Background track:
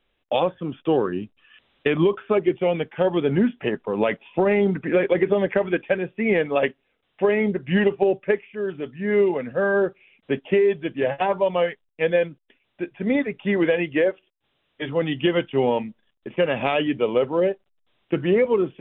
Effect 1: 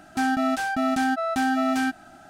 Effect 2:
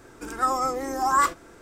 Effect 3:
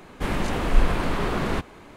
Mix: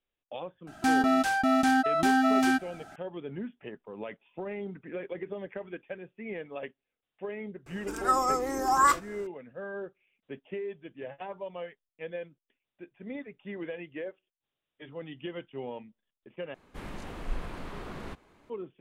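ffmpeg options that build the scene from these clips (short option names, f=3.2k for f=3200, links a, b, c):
-filter_complex "[0:a]volume=-18dB,asplit=2[a][b];[a]atrim=end=16.544[c];[3:a]atrim=end=1.96,asetpts=PTS-STARTPTS,volume=-15.5dB[d];[b]atrim=start=18.496[e];[1:a]atrim=end=2.29,asetpts=PTS-STARTPTS,volume=-0.5dB,afade=t=in:d=0.004:c=hsin,afade=t=out:st=2.286:d=0.004:c=hsin,adelay=670[f];[2:a]atrim=end=1.61,asetpts=PTS-STARTPTS,volume=-1.5dB,afade=t=in:d=0.004:c=hsin,afade=t=out:st=1.606:d=0.004:c=hsin,adelay=7660[g];[c][d]acrossfade=d=0.004:c1=hsin:c2=hsin[h];[h][e]acrossfade=d=0.004:c1=hsin:c2=hsin[i];[i][f][g]amix=inputs=3:normalize=0"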